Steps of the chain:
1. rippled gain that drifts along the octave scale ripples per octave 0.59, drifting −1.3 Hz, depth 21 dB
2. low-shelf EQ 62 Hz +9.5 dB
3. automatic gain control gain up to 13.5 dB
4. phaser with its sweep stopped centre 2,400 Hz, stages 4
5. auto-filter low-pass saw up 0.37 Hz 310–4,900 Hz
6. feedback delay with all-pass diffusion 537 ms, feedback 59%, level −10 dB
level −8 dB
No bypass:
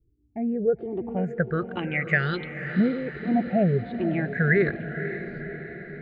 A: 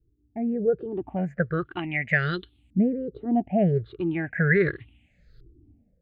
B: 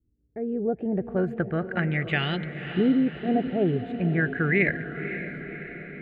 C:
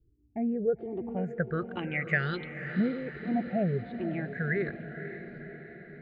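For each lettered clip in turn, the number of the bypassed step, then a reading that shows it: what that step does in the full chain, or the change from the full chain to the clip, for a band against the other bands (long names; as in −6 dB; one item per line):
6, echo-to-direct ratio −8.0 dB to none audible
1, 4 kHz band +7.0 dB
3, change in momentary loudness spread +1 LU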